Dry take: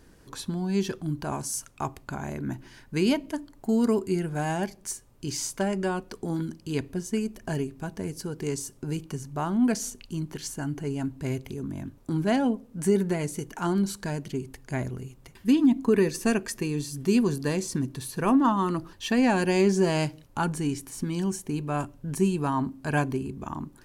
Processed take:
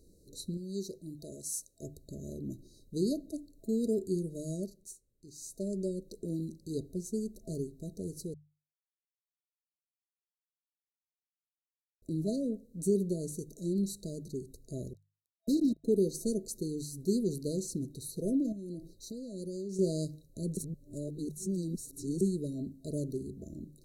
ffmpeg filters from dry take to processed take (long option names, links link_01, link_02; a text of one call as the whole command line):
ffmpeg -i in.wav -filter_complex "[0:a]asettb=1/sr,asplit=3[link_01][link_02][link_03];[link_01]atrim=end=0.574[link_04];[link_02]atrim=start=0.57:end=1.83,asetpts=PTS-STARTPTS,afade=type=in:duration=0.004:curve=qsin,afade=type=out:start_time=1.256:duration=0.004:curve=qsin,lowshelf=frequency=310:gain=-10[link_05];[link_03]atrim=start=1.826[link_06];[link_04][link_05]acrossfade=duration=0.004:curve1=hsin:curve2=qsin[link_07];[link_07][link_06]acrossfade=duration=0.004:curve1=qsin:curve2=hsin,asettb=1/sr,asplit=3[link_08][link_09][link_10];[link_08]atrim=end=14.934[link_11];[link_09]atrim=start=14.93:end=15.84,asetpts=PTS-STARTPTS,afade=type=in:duration=0.004:curve=qsin,afade=type=out:start_time=0.906:duration=0.004:curve=qsin,acrusher=bits=3:mix=0:aa=0.5[link_12];[link_10]atrim=start=15.836[link_13];[link_11][link_12]acrossfade=duration=0.004:curve1=hsin:curve2=qsin[link_14];[link_14][link_13]acrossfade=duration=0.004:curve1=qsin:curve2=hsin,asettb=1/sr,asplit=3[link_15][link_16][link_17];[link_15]atrim=end=18.524[link_18];[link_16]atrim=start=18.52:end=19.79,asetpts=PTS-STARTPTS,afade=type=in:duration=0.004:curve=qsin,afade=type=out:start_time=1.266:duration=0.004:curve=qsin,acompressor=threshold=-30dB:ratio=6:attack=3.2:release=140:knee=1:detection=peak[link_19];[link_17]atrim=start=19.786[link_20];[link_18][link_19]acrossfade=duration=0.004:curve1=hsin:curve2=qsin[link_21];[link_21][link_20]acrossfade=duration=0.004:curve1=qsin:curve2=hsin,asplit=7[link_22][link_23][link_24][link_25][link_26][link_27][link_28];[link_22]atrim=end=4.98,asetpts=PTS-STARTPTS,afade=type=out:start_time=4.57:duration=0.41:silence=0.223872[link_29];[link_23]atrim=start=4.98:end=5.34,asetpts=PTS-STARTPTS,volume=-13dB[link_30];[link_24]atrim=start=5.34:end=8.34,asetpts=PTS-STARTPTS,afade=type=in:duration=0.41:silence=0.223872,afade=type=out:start_time=2.996:duration=0.004:curve=hsin[link_31];[link_25]atrim=start=8.34:end=12.02,asetpts=PTS-STARTPTS,volume=0[link_32];[link_26]atrim=start=12.02:end=20.572,asetpts=PTS-STARTPTS,afade=type=in:duration=0.004:curve=hsin[link_33];[link_27]atrim=start=20.568:end=22.212,asetpts=PTS-STARTPTS,areverse[link_34];[link_28]atrim=start=22.208[link_35];[link_29][link_30][link_31][link_32][link_33]concat=n=5:v=0:a=1[link_36];[link_36][link_34]acrossfade=duration=0.004:curve1=hsin:curve2=hsin[link_37];[link_37][link_35]acrossfade=duration=0.004:curve1=hsin:curve2=hsin,bandreject=frequency=50:width_type=h:width=6,bandreject=frequency=100:width_type=h:width=6,bandreject=frequency=150:width_type=h:width=6,afftfilt=real='re*(1-between(b*sr/4096,660,3800))':imag='im*(1-between(b*sr/4096,660,3800))':win_size=4096:overlap=0.75,equalizer=frequency=125:width_type=o:width=0.33:gain=-6,equalizer=frequency=250:width_type=o:width=0.33:gain=-6,equalizer=frequency=630:width_type=o:width=0.33:gain=-7,equalizer=frequency=3150:width_type=o:width=0.33:gain=11,equalizer=frequency=5000:width_type=o:width=0.33:gain=-9,volume=-4.5dB" out.wav